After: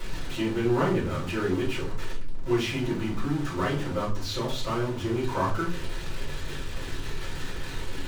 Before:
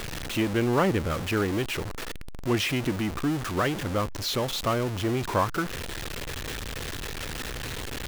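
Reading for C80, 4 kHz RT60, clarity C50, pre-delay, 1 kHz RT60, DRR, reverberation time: 13.0 dB, 0.30 s, 7.0 dB, 4 ms, 0.35 s, -9.0 dB, 0.40 s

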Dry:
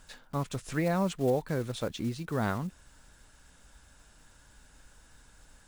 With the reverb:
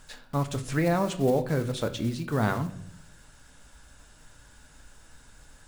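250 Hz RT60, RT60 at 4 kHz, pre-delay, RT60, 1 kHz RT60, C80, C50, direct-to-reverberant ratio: 0.90 s, 0.55 s, 7 ms, 0.70 s, 0.60 s, 17.0 dB, 14.0 dB, 8.0 dB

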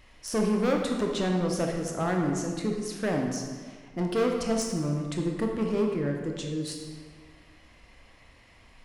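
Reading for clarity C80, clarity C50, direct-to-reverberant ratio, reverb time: 5.0 dB, 3.0 dB, 1.0 dB, 1.7 s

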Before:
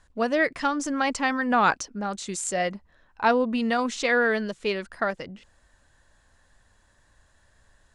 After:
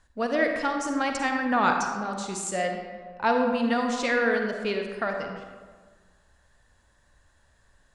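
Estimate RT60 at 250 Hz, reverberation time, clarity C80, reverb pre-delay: 1.7 s, 1.6 s, 5.0 dB, 40 ms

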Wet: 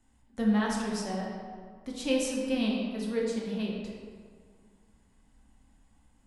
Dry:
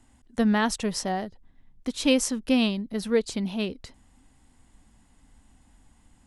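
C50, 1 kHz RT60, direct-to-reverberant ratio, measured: 1.0 dB, 1.9 s, -3.0 dB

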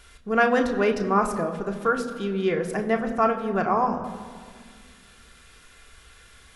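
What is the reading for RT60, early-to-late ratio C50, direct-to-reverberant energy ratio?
1.9 s, 10.5 dB, 2.0 dB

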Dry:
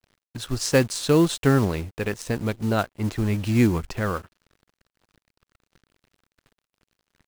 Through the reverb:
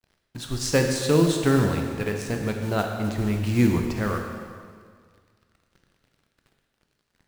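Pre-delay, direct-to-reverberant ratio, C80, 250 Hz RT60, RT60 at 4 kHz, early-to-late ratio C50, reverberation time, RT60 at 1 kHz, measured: 7 ms, 2.5 dB, 5.0 dB, 1.9 s, 1.8 s, 4.0 dB, 1.9 s, 1.9 s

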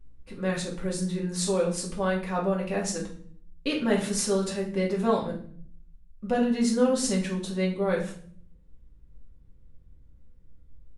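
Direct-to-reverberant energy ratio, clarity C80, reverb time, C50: -4.0 dB, 12.5 dB, 0.55 s, 7.5 dB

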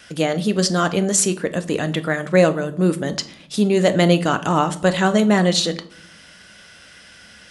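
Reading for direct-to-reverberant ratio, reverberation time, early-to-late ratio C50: 9.5 dB, 0.60 s, 16.0 dB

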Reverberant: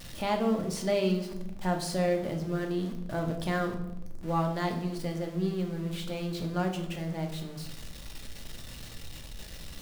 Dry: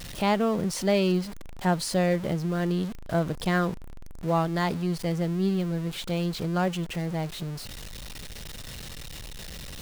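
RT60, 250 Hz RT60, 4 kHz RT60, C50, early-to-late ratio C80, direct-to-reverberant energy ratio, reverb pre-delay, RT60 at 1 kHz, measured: 0.90 s, 1.4 s, 0.60 s, 9.0 dB, 11.5 dB, 3.0 dB, 3 ms, 0.70 s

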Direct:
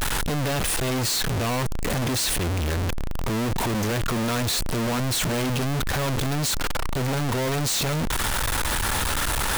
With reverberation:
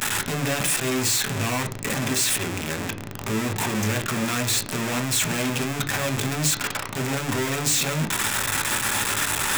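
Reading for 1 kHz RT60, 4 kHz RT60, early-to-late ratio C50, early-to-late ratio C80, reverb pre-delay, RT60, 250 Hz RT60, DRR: 0.40 s, 0.45 s, 14.5 dB, 19.5 dB, 3 ms, 0.40 s, 0.50 s, 5.0 dB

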